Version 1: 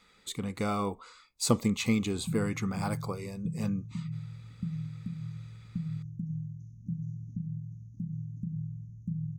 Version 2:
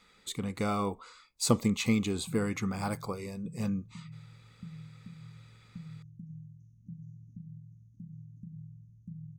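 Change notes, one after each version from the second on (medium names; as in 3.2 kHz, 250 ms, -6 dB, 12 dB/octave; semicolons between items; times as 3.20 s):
background -10.0 dB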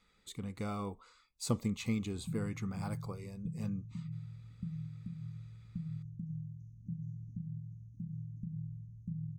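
speech -10.0 dB; master: add bass shelf 140 Hz +9.5 dB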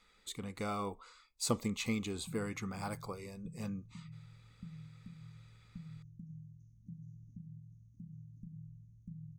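speech +4.5 dB; master: add peaking EQ 120 Hz -9 dB 2.4 oct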